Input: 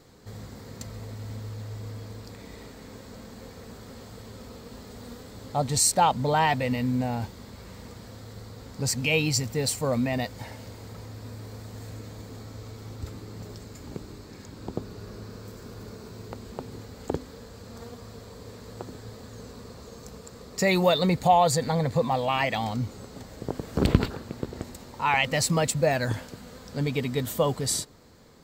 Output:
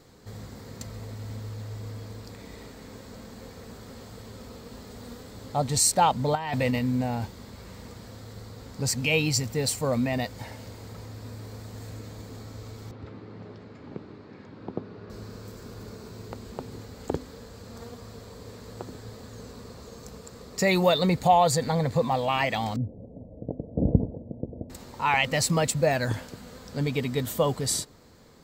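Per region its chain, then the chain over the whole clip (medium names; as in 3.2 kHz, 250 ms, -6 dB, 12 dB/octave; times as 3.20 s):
6.35–6.79 s: band-stop 1.4 kHz, Q 26 + compressor with a negative ratio -26 dBFS, ratio -0.5
12.91–15.10 s: band-pass 130–2900 Hz + distance through air 75 m
22.76–24.70 s: steep low-pass 710 Hz 48 dB/octave + comb of notches 390 Hz + loudspeaker Doppler distortion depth 0.25 ms
whole clip: none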